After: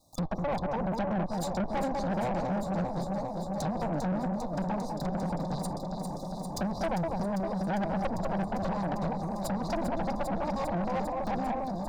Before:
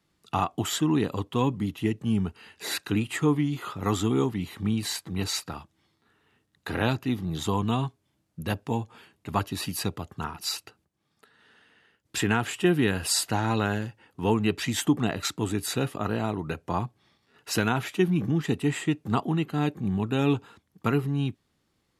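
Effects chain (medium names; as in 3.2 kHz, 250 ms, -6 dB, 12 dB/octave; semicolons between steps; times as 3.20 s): comb filter that takes the minimum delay 2.3 ms; FFT band-reject 670–1900 Hz; low-pass that closes with the level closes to 370 Hz, closed at -27.5 dBFS; on a send: echo whose repeats swap between lows and highs 369 ms, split 870 Hz, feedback 87%, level -6 dB; on the sum: saturation -31 dBFS, distortion -9 dB; in parallel at +2 dB: peak limiter -42 dBFS, peak gain reduction 11 dB; on the sum: wide varispeed 1.85×; trim +2 dB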